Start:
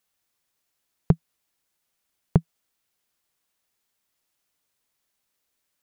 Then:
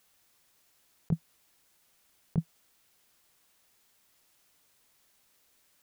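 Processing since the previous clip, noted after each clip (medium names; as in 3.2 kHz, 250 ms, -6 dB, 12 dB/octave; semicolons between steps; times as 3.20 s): compressor with a negative ratio -23 dBFS, ratio -0.5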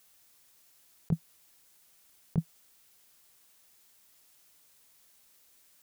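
treble shelf 4.6 kHz +6.5 dB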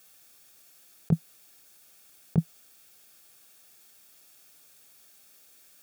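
comb of notches 1 kHz; trim +7 dB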